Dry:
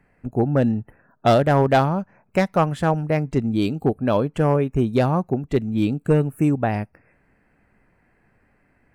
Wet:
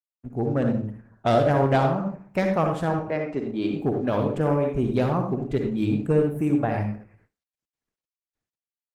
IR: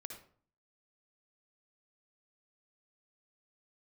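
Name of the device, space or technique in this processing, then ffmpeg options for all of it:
speakerphone in a meeting room: -filter_complex "[0:a]asettb=1/sr,asplit=3[a][b][c];[a]atrim=end=2.994[d];[b]atrim=start=2.99:end=3.74,asetpts=PTS-STARTPTS,afade=t=in:d=0.004:c=qsin,afade=t=out:st=0.746:d=0.004:c=qsin,acrossover=split=220 4800:gain=0.158 1 0.178[e][f][g];[e][f][g]amix=inputs=3:normalize=0[h];[c]atrim=start=3.736[i];[d][h]acrossfade=d=0.004:c1=hsin:c2=qsin[j];[j][i]acrossfade=d=0.004:c1=qsin:c2=hsin[k];[1:a]atrim=start_sample=2205[l];[k][l]afir=irnorm=-1:irlink=0,dynaudnorm=f=360:g=3:m=3dB,agate=range=-46dB:threshold=-56dB:ratio=16:detection=peak,volume=-2dB" -ar 48000 -c:a libopus -b:a 16k

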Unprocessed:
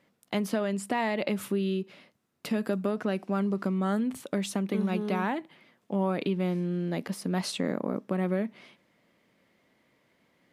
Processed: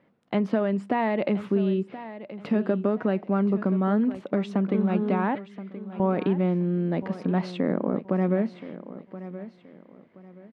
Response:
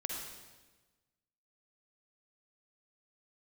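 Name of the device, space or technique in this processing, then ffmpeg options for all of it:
phone in a pocket: -filter_complex "[0:a]lowshelf=f=460:g=-3.5,asettb=1/sr,asplit=3[a][b][c];[a]atrim=end=5.354[d];[b]atrim=start=5.35:end=6,asetpts=PTS-STARTPTS,afade=t=in:d=0.004:c=qsin,afade=t=out:st=0.646:d=0.004:c=qsin,highpass=f=1.4k:w=0.5412,highpass=f=1.4k:w=1.3066[e];[c]atrim=start=5.996[f];[d][e]acrossfade=d=0.004:c1=hsin:c2=qsin[g];[g][f]acrossfade=d=0.004:c1=qsin:c2=hsin,lowpass=3.4k,equalizer=f=190:t=o:w=2.9:g=2.5,highshelf=f=2.1k:g=-11.5,aecho=1:1:1025|2050|3075:0.2|0.0599|0.018,volume=5.5dB"

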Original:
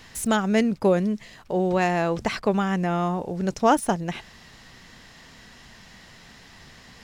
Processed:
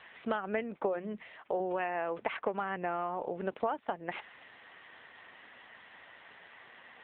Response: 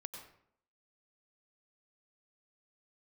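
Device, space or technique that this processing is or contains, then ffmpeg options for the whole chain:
voicemail: -filter_complex "[0:a]asettb=1/sr,asplit=3[a][b][c];[a]atrim=end=0.884[d];[b]atrim=start=0.88:end=1.6,asetpts=PTS-STARTPTS,afade=t=in:d=0.004:c=qsin,afade=t=out:st=0.716:d=0.004:c=qsin,bandreject=f=60:t=h:w=6,bandreject=f=120:t=h:w=6,bandreject=f=180:t=h:w=6,bandreject=f=240:t=h:w=6,bandreject=f=300:t=h:w=6,bandreject=f=360:t=h:w=6[e];[c]atrim=start=1.596[f];[d][e]acrossfade=d=0.004:c1=hsin:c2=qsin[g];[g][f]acrossfade=d=0.004:c1=qsin:c2=hsin,highpass=440,lowpass=3k,acompressor=threshold=-28dB:ratio=10" -ar 8000 -c:a libopencore_amrnb -b:a 7950

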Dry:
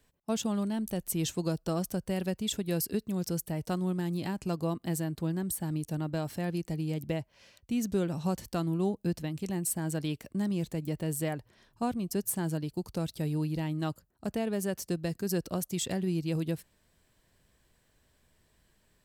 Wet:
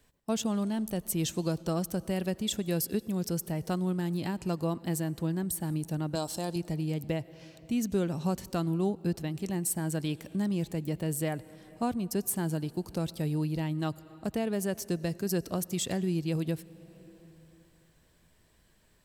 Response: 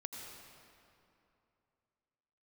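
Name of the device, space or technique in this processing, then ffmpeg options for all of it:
compressed reverb return: -filter_complex "[0:a]asettb=1/sr,asplit=3[a][b][c];[a]atrim=end=6.154[d];[b]atrim=start=6.15:end=6.56,asetpts=PTS-STARTPTS,afade=t=in:d=0.004:c=qsin,afade=t=out:st=0.406:d=0.004:c=qsin,equalizer=f=125:t=o:w=1:g=-10,equalizer=f=1k:t=o:w=1:g=6,equalizer=f=2k:t=o:w=1:g=-12,equalizer=f=4k:t=o:w=1:g=8,equalizer=f=8k:t=o:w=1:g=11[e];[c]atrim=start=6.556[f];[d][e]acrossfade=d=0.004:c1=hsin:c2=qsin[g];[g][f]acrossfade=d=0.004:c1=qsin:c2=hsin,asplit=2[h][i];[1:a]atrim=start_sample=2205[j];[i][j]afir=irnorm=-1:irlink=0,acompressor=threshold=-42dB:ratio=6,volume=-5dB[k];[h][k]amix=inputs=2:normalize=0"

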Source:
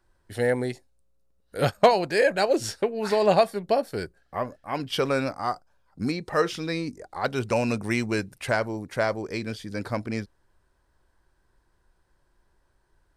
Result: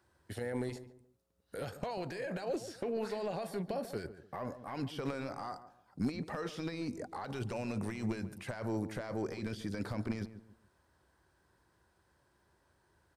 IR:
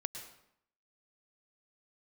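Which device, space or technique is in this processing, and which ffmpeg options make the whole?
de-esser from a sidechain: -filter_complex "[0:a]highpass=f=67:w=0.5412,highpass=f=67:w=1.3066,asplit=2[a][b];[b]highpass=f=4.9k:p=1,apad=whole_len=580598[c];[a][c]sidechaincompress=threshold=-49dB:ratio=10:attack=0.58:release=28,asplit=2[d][e];[e]adelay=142,lowpass=f=1.1k:p=1,volume=-11.5dB,asplit=2[f][g];[g]adelay=142,lowpass=f=1.1k:p=1,volume=0.33,asplit=2[h][i];[i]adelay=142,lowpass=f=1.1k:p=1,volume=0.33[j];[d][f][h][j]amix=inputs=4:normalize=0"

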